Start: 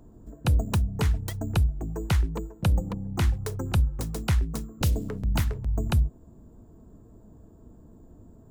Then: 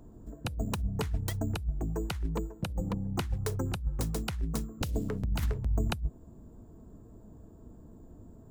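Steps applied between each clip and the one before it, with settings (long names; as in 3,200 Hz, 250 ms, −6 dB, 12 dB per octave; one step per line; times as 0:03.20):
compressor whose output falls as the input rises −25 dBFS, ratio −0.5
level −3.5 dB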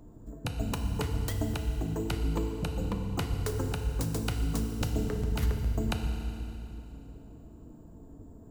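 feedback delay network reverb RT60 2.8 s, low-frequency decay 1.3×, high-frequency decay 0.95×, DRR 3.5 dB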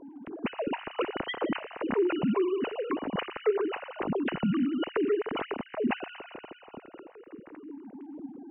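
three sine waves on the formant tracks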